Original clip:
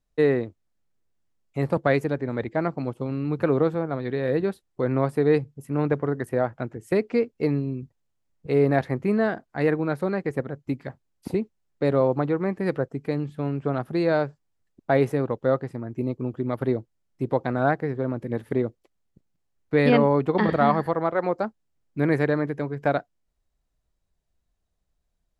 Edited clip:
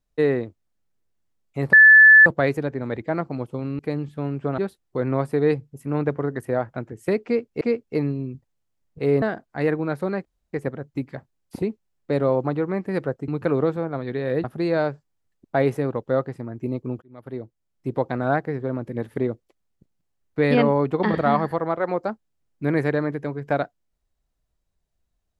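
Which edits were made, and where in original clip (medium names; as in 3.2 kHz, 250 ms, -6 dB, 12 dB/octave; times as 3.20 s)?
1.73 s: add tone 1.74 kHz -6.5 dBFS 0.53 s
3.26–4.42 s: swap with 13.00–13.79 s
7.09–7.45 s: loop, 2 plays
8.70–9.22 s: delete
10.25 s: insert room tone 0.28 s
16.37–17.27 s: fade in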